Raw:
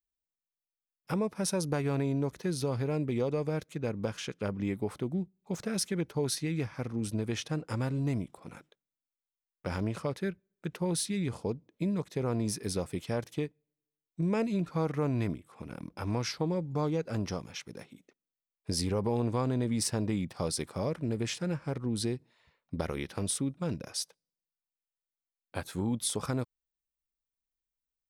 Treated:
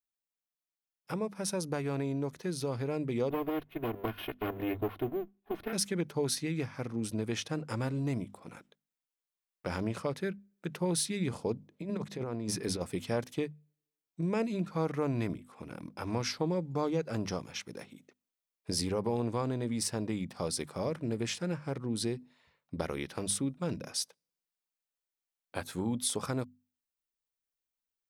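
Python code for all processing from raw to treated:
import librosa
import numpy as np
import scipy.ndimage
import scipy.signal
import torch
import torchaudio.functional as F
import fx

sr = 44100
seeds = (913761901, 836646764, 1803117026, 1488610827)

y = fx.chain(x, sr, fx.lower_of_two(delay_ms=2.8),
    fx.cheby1_lowpass(hz=3200.0, order=3),
    fx.resample_bad(factor=3, down='filtered', up='hold'), at=(3.3, 5.73))
y = fx.chain(y, sr, fx.high_shelf(hz=5600.0, db=-8.5),
    fx.hum_notches(base_hz=50, count=4),
    fx.over_compress(threshold_db=-34.0, ratio=-0.5), at=(11.71, 12.81))
y = fx.low_shelf(y, sr, hz=67.0, db=-11.5)
y = fx.hum_notches(y, sr, base_hz=50, count=5)
y = fx.rider(y, sr, range_db=3, speed_s=2.0)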